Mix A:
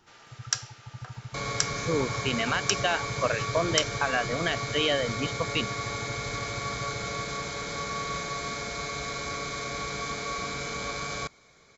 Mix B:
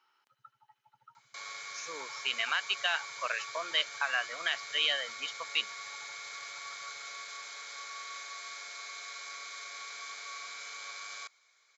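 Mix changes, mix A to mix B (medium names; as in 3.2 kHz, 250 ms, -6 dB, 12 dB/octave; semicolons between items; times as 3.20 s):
first sound: muted; second sound -7.0 dB; master: add high-pass 1.3 kHz 12 dB/octave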